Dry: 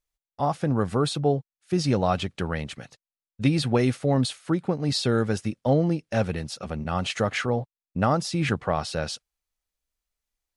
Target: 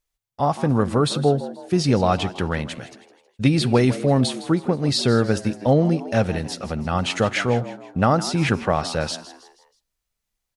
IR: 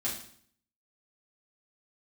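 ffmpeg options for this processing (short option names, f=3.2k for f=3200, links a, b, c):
-filter_complex "[0:a]asplit=5[a][b][c][d][e];[b]adelay=160,afreqshift=89,volume=-15dB[f];[c]adelay=320,afreqshift=178,volume=-22.3dB[g];[d]adelay=480,afreqshift=267,volume=-29.7dB[h];[e]adelay=640,afreqshift=356,volume=-37dB[i];[a][f][g][h][i]amix=inputs=5:normalize=0,asplit=2[j][k];[1:a]atrim=start_sample=2205[l];[k][l]afir=irnorm=-1:irlink=0,volume=-24.5dB[m];[j][m]amix=inputs=2:normalize=0,volume=4dB"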